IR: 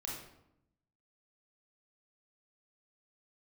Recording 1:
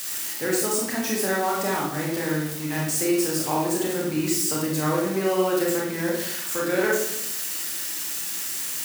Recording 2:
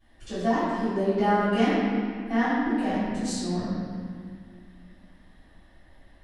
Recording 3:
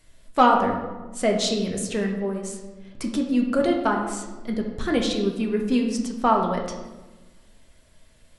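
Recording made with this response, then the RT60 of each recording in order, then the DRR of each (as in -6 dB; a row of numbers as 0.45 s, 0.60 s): 1; 0.80 s, 2.0 s, 1.2 s; -3.5 dB, -19.5 dB, 1.0 dB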